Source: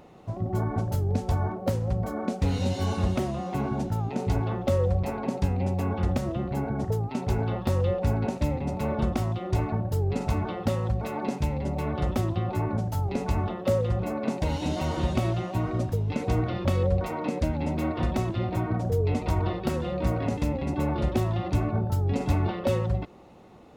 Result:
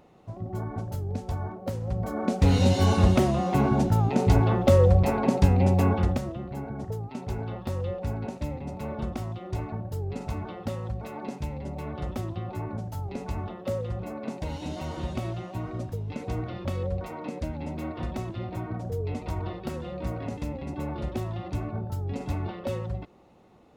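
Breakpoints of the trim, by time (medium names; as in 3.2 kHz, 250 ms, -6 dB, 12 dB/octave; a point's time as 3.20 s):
1.71 s -5.5 dB
2.52 s +6 dB
5.87 s +6 dB
6.37 s -6 dB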